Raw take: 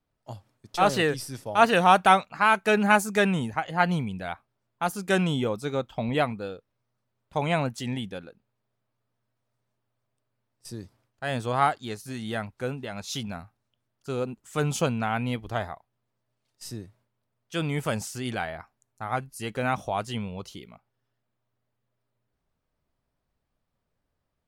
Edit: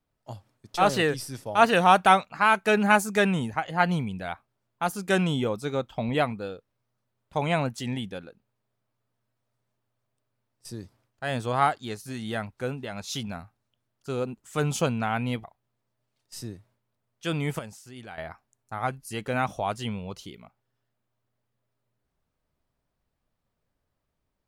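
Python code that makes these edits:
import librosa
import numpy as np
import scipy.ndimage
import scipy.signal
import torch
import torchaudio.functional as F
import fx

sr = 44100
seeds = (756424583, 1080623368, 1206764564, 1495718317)

y = fx.edit(x, sr, fx.cut(start_s=15.44, length_s=0.29),
    fx.clip_gain(start_s=17.88, length_s=0.59, db=-12.0), tone=tone)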